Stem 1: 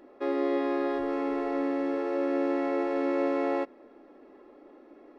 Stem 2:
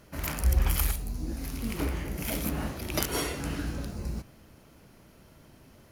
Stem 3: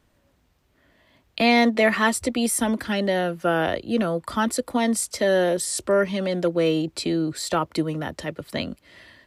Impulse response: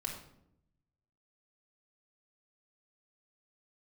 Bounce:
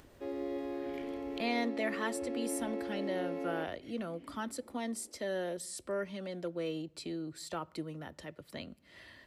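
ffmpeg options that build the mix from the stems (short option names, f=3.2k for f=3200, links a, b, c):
-filter_complex "[0:a]equalizer=f=1.3k:t=o:w=1:g=-10.5,volume=-9.5dB[a];[1:a]acompressor=threshold=-27dB:ratio=6,asplit=3[b][c][d];[b]bandpass=f=270:t=q:w=8,volume=0dB[e];[c]bandpass=f=2.29k:t=q:w=8,volume=-6dB[f];[d]bandpass=f=3.01k:t=q:w=8,volume=-9dB[g];[e][f][g]amix=inputs=3:normalize=0,adelay=700,volume=-3.5dB[h];[2:a]acompressor=mode=upward:threshold=-27dB:ratio=2.5,volume=-16.5dB,asplit=3[i][j][k];[j]volume=-20.5dB[l];[k]apad=whole_len=291546[m];[h][m]sidechaincompress=threshold=-48dB:ratio=8:attack=33:release=326[n];[3:a]atrim=start_sample=2205[o];[l][o]afir=irnorm=-1:irlink=0[p];[a][n][i][p]amix=inputs=4:normalize=0"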